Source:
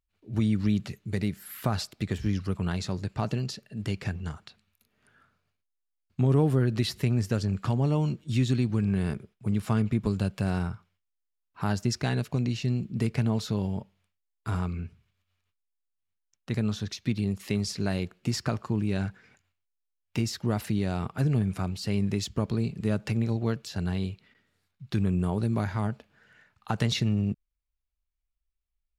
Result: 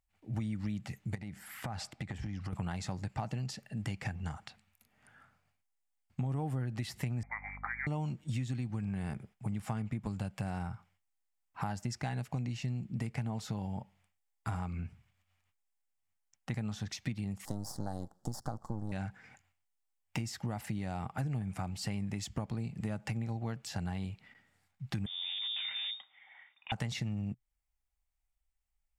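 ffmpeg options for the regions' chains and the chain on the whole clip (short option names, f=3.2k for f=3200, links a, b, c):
-filter_complex "[0:a]asettb=1/sr,asplit=3[a][b][c];[a]atrim=end=1.154[d];[b]atrim=start=1.15:end=2.53,asetpts=PTS-STARTPTS,afade=t=in:d=0.004:c=qsin,afade=t=out:st=1.376:d=0.004:c=qsin,lowpass=11k,highshelf=f=5k:g=-6.5,acompressor=threshold=-35dB:ratio=6:attack=3.2:release=140:knee=1:detection=peak[e];[c]atrim=start=2.526[f];[d][e]acrossfade=d=0.004:c1=hsin:c2=qsin[g];[g][f]acrossfade=d=0.004:c1=qsin:c2=hsin,asettb=1/sr,asplit=3[h][i][j];[h]atrim=end=7.234[k];[i]atrim=start=7.23:end=7.87,asetpts=PTS-STARTPTS,afade=t=in:d=0.004:c=qsin,afade=t=out:st=0.636:d=0.004:c=qsin,highpass=660,lowpass=f=2.1k:t=q:w=0.5098,lowpass=f=2.1k:t=q:w=0.6013,lowpass=f=2.1k:t=q:w=0.9,lowpass=f=2.1k:t=q:w=2.563,afreqshift=-2500,aeval=exprs='val(0)+0.00398*(sin(2*PI*50*n/s)+sin(2*PI*2*50*n/s)/2+sin(2*PI*3*50*n/s)/3+sin(2*PI*4*50*n/s)/4+sin(2*PI*5*50*n/s)/5)':c=same[l];[j]atrim=start=7.866[m];[k][l]acrossfade=d=0.004:c1=hsin:c2=qsin[n];[n][m]acrossfade=d=0.004:c1=qsin:c2=hsin,asettb=1/sr,asplit=3[o][p][q];[o]atrim=end=17.454[r];[p]atrim=start=17.45:end=18.92,asetpts=PTS-STARTPTS,afade=t=in:d=0.004:c=qsin,afade=t=out:st=1.466:d=0.004:c=qsin,aeval=exprs='max(val(0),0)':c=same,asuperstop=centerf=2400:order=4:qfactor=0.71[s];[q]atrim=start=18.916[t];[r][s]acrossfade=d=0.004:c1=hsin:c2=qsin[u];[u][t]acrossfade=d=0.004:c1=qsin:c2=hsin,asettb=1/sr,asplit=3[v][w][x];[v]atrim=end=25.064[y];[w]atrim=start=25.06:end=26.72,asetpts=PTS-STARTPTS,afade=t=in:d=0.004:c=qsin,afade=t=out:st=1.656:d=0.004:c=qsin,aeval=exprs='(tanh(31.6*val(0)+0.45)-tanh(0.45))/31.6':c=same,lowpass=f=3.1k:t=q:w=0.5098,lowpass=f=3.1k:t=q:w=0.6013,lowpass=f=3.1k:t=q:w=0.9,lowpass=f=3.1k:t=q:w=2.563,afreqshift=-3700[z];[x]atrim=start=26.716[aa];[y][z]acrossfade=d=0.004:c1=hsin:c2=qsin[ab];[ab][aa]acrossfade=d=0.004:c1=qsin:c2=hsin,equalizer=f=125:t=o:w=0.33:g=3,equalizer=f=400:t=o:w=0.33:g=-9,equalizer=f=800:t=o:w=0.33:g=10,equalizer=f=2k:t=o:w=0.33:g=5,equalizer=f=4k:t=o:w=0.33:g=-5,equalizer=f=8k:t=o:w=0.33:g=5,acompressor=threshold=-34dB:ratio=5"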